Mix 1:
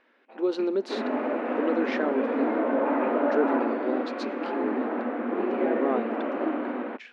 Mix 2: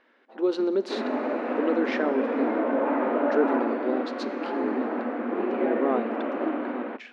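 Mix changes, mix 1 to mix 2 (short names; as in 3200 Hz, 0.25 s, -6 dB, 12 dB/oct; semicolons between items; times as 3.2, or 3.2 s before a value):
speech: send +9.5 dB; first sound: remove synth low-pass 2500 Hz, resonance Q 11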